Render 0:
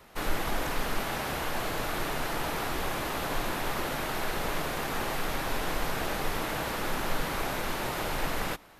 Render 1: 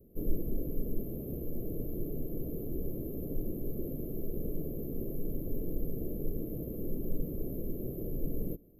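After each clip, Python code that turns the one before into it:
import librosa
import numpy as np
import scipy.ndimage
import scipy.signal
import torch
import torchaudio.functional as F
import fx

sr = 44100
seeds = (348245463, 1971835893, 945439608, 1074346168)

y = fx.rider(x, sr, range_db=10, speed_s=0.5)
y = scipy.signal.sosfilt(scipy.signal.cheby2(4, 40, [830.0, 8800.0], 'bandstop', fs=sr, output='sos'), y)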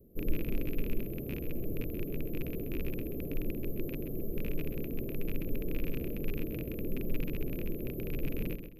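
y = fx.rattle_buzz(x, sr, strikes_db=-35.0, level_db=-33.0)
y = fx.echo_feedback(y, sr, ms=131, feedback_pct=32, wet_db=-9)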